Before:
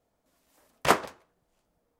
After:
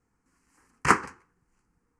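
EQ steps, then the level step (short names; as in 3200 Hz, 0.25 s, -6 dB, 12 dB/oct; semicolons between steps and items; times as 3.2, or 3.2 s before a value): LPF 8900 Hz 24 dB/oct; fixed phaser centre 1500 Hz, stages 4; +5.0 dB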